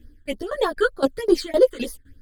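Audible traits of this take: phasing stages 8, 3.3 Hz, lowest notch 690–2700 Hz; tremolo saw down 3.9 Hz, depth 95%; a shimmering, thickened sound

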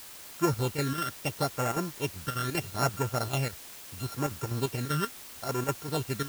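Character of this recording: a buzz of ramps at a fixed pitch in blocks of 32 samples; phasing stages 12, 0.75 Hz, lowest notch 740–4100 Hz; chopped level 5.1 Hz, depth 60%, duty 75%; a quantiser's noise floor 8-bit, dither triangular

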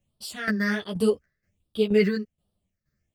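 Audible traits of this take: phasing stages 6, 1.3 Hz, lowest notch 800–1900 Hz; tremolo saw down 2.1 Hz, depth 80%; a shimmering, thickened sound

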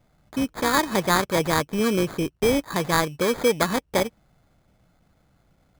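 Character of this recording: aliases and images of a low sample rate 2800 Hz, jitter 0%

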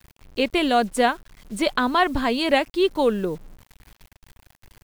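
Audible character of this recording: a quantiser's noise floor 8-bit, dither none

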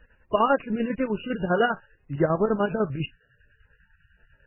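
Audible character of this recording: chopped level 10 Hz, depth 60%, duty 55%; a quantiser's noise floor 12-bit, dither none; MP3

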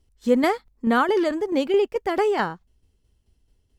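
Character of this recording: tremolo saw down 4.6 Hz, depth 50%

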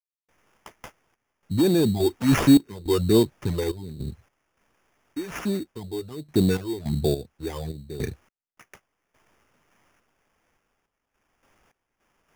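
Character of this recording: a quantiser's noise floor 12-bit, dither triangular; random-step tremolo, depth 100%; phasing stages 8, 1.3 Hz, lowest notch 170–2900 Hz; aliases and images of a low sample rate 4100 Hz, jitter 0%

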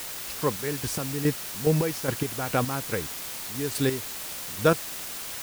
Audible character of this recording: chopped level 2.4 Hz, depth 65%, duty 35%; a quantiser's noise floor 6-bit, dither triangular

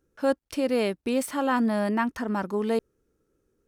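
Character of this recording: noise floor -77 dBFS; spectral tilt -4.5 dB/oct

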